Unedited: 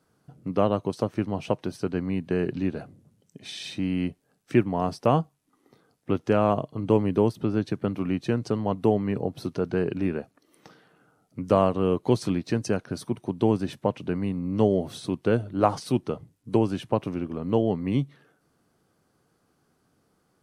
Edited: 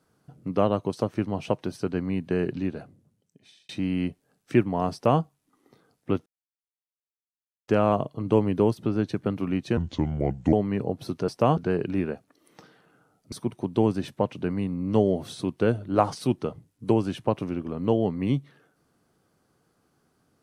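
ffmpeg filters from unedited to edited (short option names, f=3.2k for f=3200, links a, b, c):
-filter_complex "[0:a]asplit=8[a][b][c][d][e][f][g][h];[a]atrim=end=3.69,asetpts=PTS-STARTPTS,afade=t=out:st=2.43:d=1.26[i];[b]atrim=start=3.69:end=6.26,asetpts=PTS-STARTPTS,afade=t=in:d=0.004:c=hsin,afade=t=out:st=2.566:d=0.004:c=hsin,apad=pad_dur=1.42[j];[c]atrim=start=6.26:end=8.354,asetpts=PTS-STARTPTS,afade=t=in:d=0.004:c=hsin[k];[d]atrim=start=8.35:end=8.89,asetpts=PTS-STARTPTS,asetrate=31311,aresample=44100[l];[e]atrim=start=8.886:end=9.642[m];[f]atrim=start=4.918:end=5.212[n];[g]atrim=start=9.638:end=11.392[o];[h]atrim=start=12.968[p];[i][j][k]concat=n=3:v=0:a=1[q];[q][l]acrossfade=d=0.004:c1=hsin:c2=hsin[r];[r][m]acrossfade=d=0.004:c1=hsin:c2=hsin[s];[s][n]acrossfade=d=0.004:c1=hsin:c2=hsin[t];[t][o]acrossfade=d=0.004:c1=hsin:c2=hsin[u];[u][p]acrossfade=d=0.004:c1=hsin:c2=hsin"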